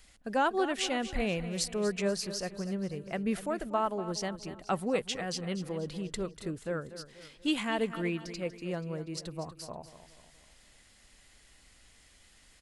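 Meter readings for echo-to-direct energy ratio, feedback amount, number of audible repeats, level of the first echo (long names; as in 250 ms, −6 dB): −12.0 dB, 45%, 4, −13.0 dB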